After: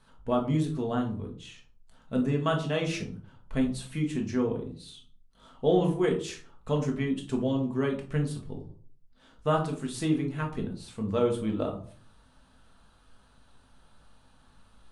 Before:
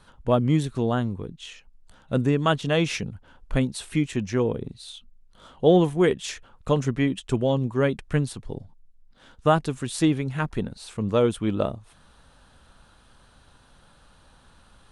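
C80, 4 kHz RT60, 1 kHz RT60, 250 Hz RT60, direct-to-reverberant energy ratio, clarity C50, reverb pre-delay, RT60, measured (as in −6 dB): 14.0 dB, 0.25 s, 0.40 s, 0.55 s, 0.5 dB, 9.5 dB, 5 ms, 0.45 s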